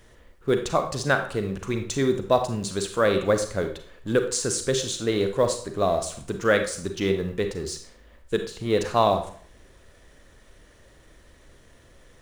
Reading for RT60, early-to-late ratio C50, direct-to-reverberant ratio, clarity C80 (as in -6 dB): 0.50 s, 8.5 dB, 6.0 dB, 12.5 dB